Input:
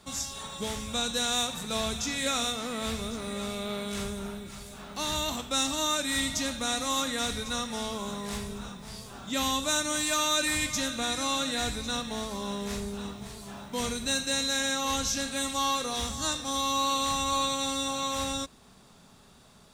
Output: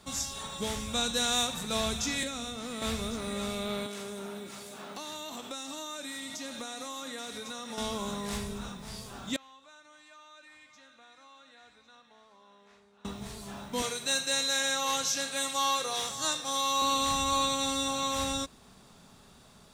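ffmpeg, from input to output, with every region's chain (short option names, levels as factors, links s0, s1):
-filter_complex "[0:a]asettb=1/sr,asplit=3[s0][s1][s2];[s0]atrim=end=2.234[s3];[s1]atrim=start=2.23:end=2.82,asetpts=PTS-STARTPTS,afade=t=in:d=0.004:c=qsin,afade=t=out:st=0.586:d=0.004:c=qsin,equalizer=f=13000:w=6.7:g=-8,acrossover=split=420|2600[s4][s5][s6];[s4]acompressor=threshold=0.0112:ratio=4[s7];[s5]acompressor=threshold=0.00708:ratio=4[s8];[s6]acompressor=threshold=0.00891:ratio=4[s9];[s7][s8][s9]amix=inputs=3:normalize=0[s10];[s2]atrim=start=2.816[s11];[s3][s10]acrossfade=d=0.004:c1=hsin:c2=qsin[s12];[s12][s11]acrossfade=d=0.004:c1=qsin:c2=hsin,asettb=1/sr,asplit=3[s13][s14][s15];[s13]atrim=end=3.864[s16];[s14]atrim=start=3.86:end=7.78,asetpts=PTS-STARTPTS,afade=t=in:d=0.004:c=qsin,afade=t=out:st=3.916:d=0.004:c=qsin,highpass=310,acompressor=threshold=0.0126:ratio=5:attack=3.2:release=140:knee=1:detection=peak,lowshelf=f=500:g=6[s17];[s15]atrim=start=7.776[s18];[s16][s17]acrossfade=d=0.004:c1=hsin:c2=qsin[s19];[s19][s18]acrossfade=d=0.004:c1=qsin:c2=hsin,asettb=1/sr,asplit=3[s20][s21][s22];[s20]atrim=end=9.364[s23];[s21]atrim=start=9.36:end=13.05,asetpts=PTS-STARTPTS,afade=t=in:d=0.004:c=qsin,afade=t=out:st=3.686:d=0.004:c=qsin,lowpass=1300,aderivative,acompressor=threshold=0.002:ratio=2:attack=3.2:release=140:knee=1:detection=peak[s24];[s22]atrim=start=13.046[s25];[s23][s24]acrossfade=d=0.004:c1=hsin:c2=qsin[s26];[s26][s25]acrossfade=d=0.004:c1=qsin:c2=hsin,asettb=1/sr,asplit=3[s27][s28][s29];[s27]atrim=end=13.824[s30];[s28]atrim=start=13.82:end=16.82,asetpts=PTS-STARTPTS,afade=t=in:d=0.004:c=qsin,afade=t=out:st=2.996:d=0.004:c=qsin,highpass=f=140:w=0.5412,highpass=f=140:w=1.3066,equalizer=f=230:t=o:w=0.55:g=-14.5[s31];[s29]atrim=start=16.816[s32];[s30][s31]acrossfade=d=0.004:c1=hsin:c2=qsin[s33];[s33][s32]acrossfade=d=0.004:c1=qsin:c2=hsin"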